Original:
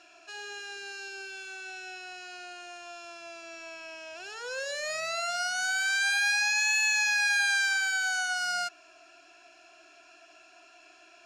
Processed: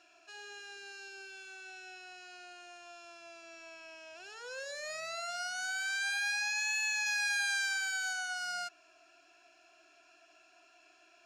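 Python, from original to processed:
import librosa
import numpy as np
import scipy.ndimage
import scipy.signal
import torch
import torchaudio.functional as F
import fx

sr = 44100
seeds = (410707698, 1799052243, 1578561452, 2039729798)

y = fx.notch(x, sr, hz=2900.0, q=9.5, at=(4.63, 5.29))
y = fx.peak_eq(y, sr, hz=12000.0, db=4.0, octaves=2.3, at=(7.06, 8.13))
y = F.gain(torch.from_numpy(y), -7.5).numpy()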